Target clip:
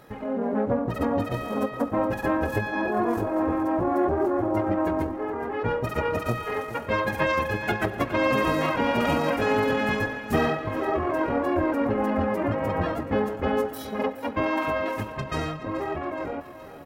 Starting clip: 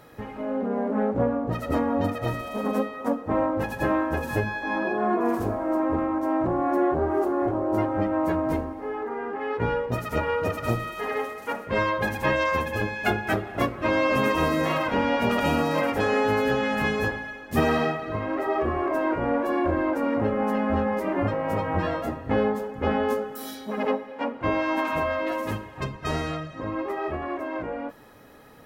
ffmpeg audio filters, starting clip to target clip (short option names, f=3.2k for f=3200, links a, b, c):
-af "aecho=1:1:717|1434|2151|2868|3585|4302:0.211|0.118|0.0663|0.0371|0.0208|0.0116,atempo=1.7"